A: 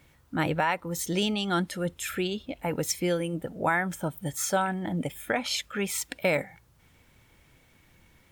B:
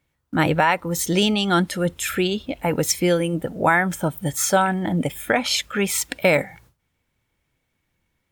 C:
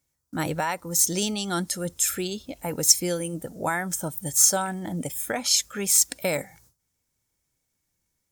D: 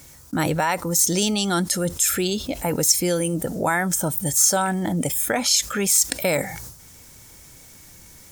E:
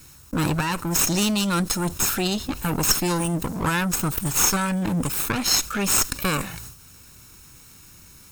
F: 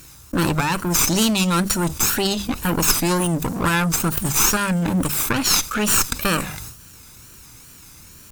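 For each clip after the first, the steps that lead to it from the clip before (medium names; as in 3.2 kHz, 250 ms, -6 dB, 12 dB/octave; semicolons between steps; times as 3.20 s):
gate with hold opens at -47 dBFS; trim +8 dB
resonant high shelf 4.2 kHz +12 dB, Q 1.5; trim -8.5 dB
level flattener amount 50%; trim -1.5 dB
comb filter that takes the minimum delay 0.75 ms
one-sided wavefolder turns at -18.5 dBFS; wow and flutter 130 cents; hum notches 50/100/150/200 Hz; trim +4 dB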